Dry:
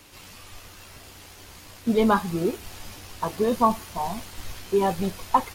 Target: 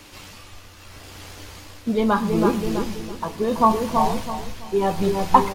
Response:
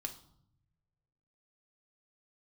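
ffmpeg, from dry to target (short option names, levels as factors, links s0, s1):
-filter_complex "[0:a]asplit=2[s0][s1];[s1]adelay=329,lowpass=f=1200:p=1,volume=0.447,asplit=2[s2][s3];[s3]adelay=329,lowpass=f=1200:p=1,volume=0.52,asplit=2[s4][s5];[s5]adelay=329,lowpass=f=1200:p=1,volume=0.52,asplit=2[s6][s7];[s7]adelay=329,lowpass=f=1200:p=1,volume=0.52,asplit=2[s8][s9];[s9]adelay=329,lowpass=f=1200:p=1,volume=0.52,asplit=2[s10][s11];[s11]adelay=329,lowpass=f=1200:p=1,volume=0.52[s12];[s0][s2][s4][s6][s8][s10][s12]amix=inputs=7:normalize=0,asplit=2[s13][s14];[1:a]atrim=start_sample=2205,lowpass=8900[s15];[s14][s15]afir=irnorm=-1:irlink=0,volume=0.841[s16];[s13][s16]amix=inputs=2:normalize=0,tremolo=f=0.75:d=0.54,volume=1.26"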